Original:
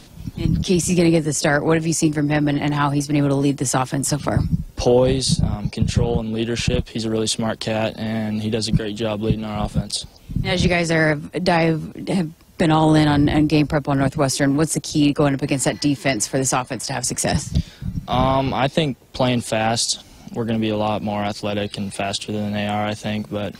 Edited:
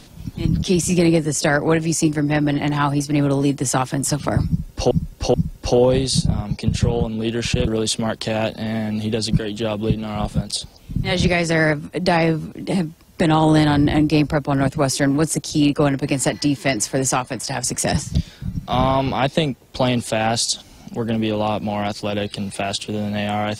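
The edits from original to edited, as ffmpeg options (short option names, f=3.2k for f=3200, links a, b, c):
-filter_complex "[0:a]asplit=4[a][b][c][d];[a]atrim=end=4.912[e];[b]atrim=start=4.478:end=4.912[f];[c]atrim=start=4.478:end=6.812[g];[d]atrim=start=7.068[h];[e][f]acrossfade=d=0.004:c1=hsin:c2=hsin[i];[i][g]acrossfade=d=0.004:c1=hsin:c2=hsin[j];[j][h]acrossfade=d=0.004:c1=hsin:c2=hsin"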